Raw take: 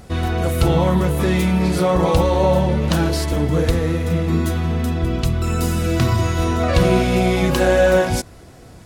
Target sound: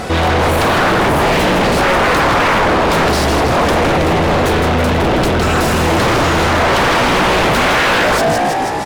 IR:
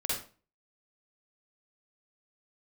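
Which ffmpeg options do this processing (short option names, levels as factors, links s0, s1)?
-filter_complex "[0:a]asplit=7[s0][s1][s2][s3][s4][s5][s6];[s1]adelay=161,afreqshift=53,volume=0.398[s7];[s2]adelay=322,afreqshift=106,volume=0.207[s8];[s3]adelay=483,afreqshift=159,volume=0.107[s9];[s4]adelay=644,afreqshift=212,volume=0.0562[s10];[s5]adelay=805,afreqshift=265,volume=0.0292[s11];[s6]adelay=966,afreqshift=318,volume=0.0151[s12];[s0][s7][s8][s9][s10][s11][s12]amix=inputs=7:normalize=0,aeval=exprs='0.891*sin(PI/2*7.08*val(0)/0.891)':c=same,asplit=2[s13][s14];[s14]highpass=f=720:p=1,volume=10,asoftclip=type=tanh:threshold=0.891[s15];[s13][s15]amix=inputs=2:normalize=0,lowpass=f=2500:p=1,volume=0.501,volume=0.422"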